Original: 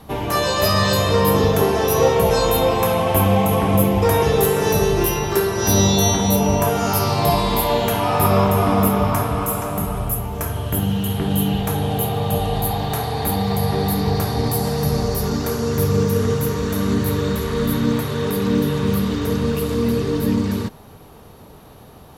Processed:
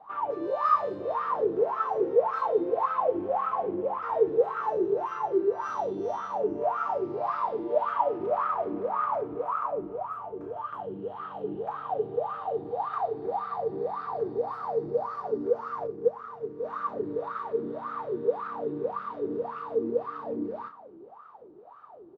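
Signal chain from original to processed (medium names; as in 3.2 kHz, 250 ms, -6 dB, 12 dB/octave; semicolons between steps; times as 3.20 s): low-pass 5 kHz 12 dB/octave; peaking EQ 1.3 kHz +4.5 dB 0.68 oct; saturation -18 dBFS, distortion -10 dB; doubling 34 ms -8 dB; delay 434 ms -21 dB; wah-wah 1.8 Hz 330–1300 Hz, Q 18; 15.87–16.64 s: upward expansion 1.5:1, over -41 dBFS; trim +8.5 dB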